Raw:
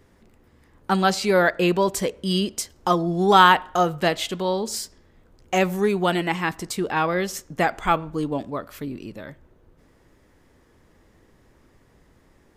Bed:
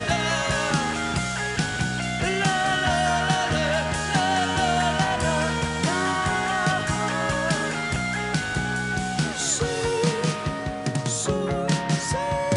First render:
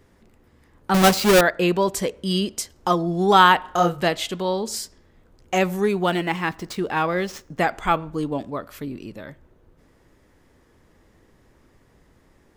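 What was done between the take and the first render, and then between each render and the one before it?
0.94–1.41 s: square wave that keeps the level; 3.61–4.05 s: doubling 29 ms -4 dB; 5.93–7.59 s: median filter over 5 samples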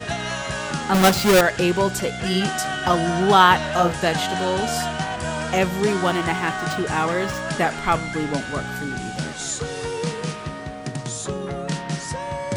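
add bed -3.5 dB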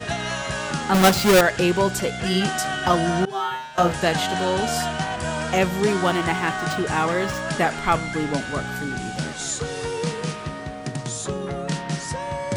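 3.25–3.78 s: feedback comb 130 Hz, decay 0.63 s, mix 100%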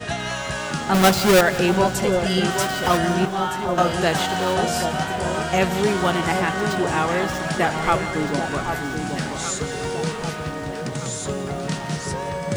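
echo whose repeats swap between lows and highs 782 ms, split 1.1 kHz, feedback 65%, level -6 dB; bit-crushed delay 174 ms, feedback 55%, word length 7-bit, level -15 dB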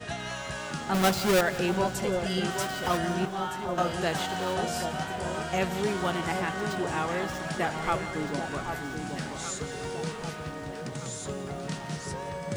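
trim -8.5 dB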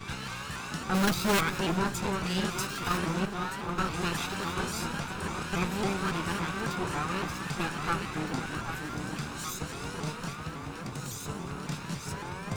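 comb filter that takes the minimum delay 0.78 ms; vibrato with a chosen wave saw up 3.6 Hz, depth 160 cents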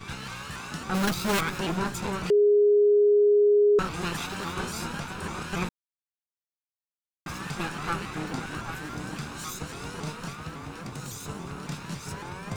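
2.30–3.79 s: bleep 413 Hz -16 dBFS; 5.69–7.26 s: mute

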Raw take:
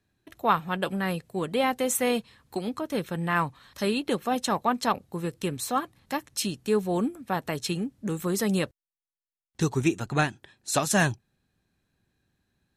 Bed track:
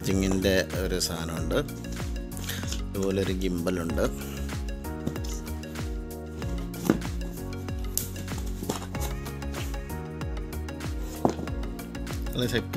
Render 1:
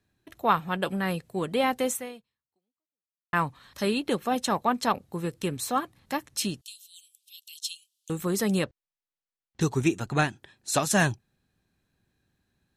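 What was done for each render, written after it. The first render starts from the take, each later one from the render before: 1.87–3.33 s: fade out exponential; 6.61–8.10 s: steep high-pass 2.9 kHz 72 dB/octave; 8.64–9.61 s: distance through air 99 m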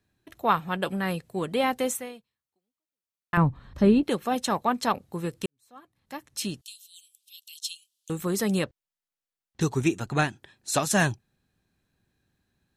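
3.37–4.03 s: tilt EQ -4.5 dB/octave; 5.46–6.57 s: fade in quadratic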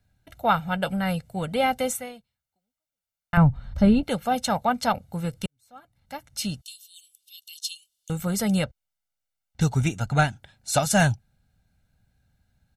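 bass shelf 97 Hz +10 dB; comb 1.4 ms, depth 73%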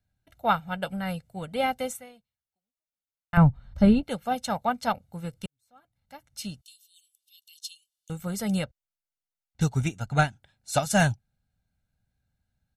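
upward expansion 1.5:1, over -34 dBFS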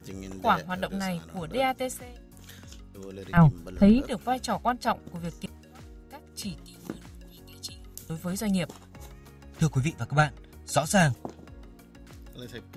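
add bed track -14.5 dB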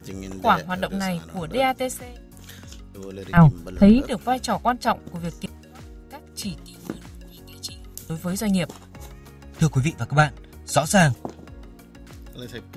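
trim +5 dB

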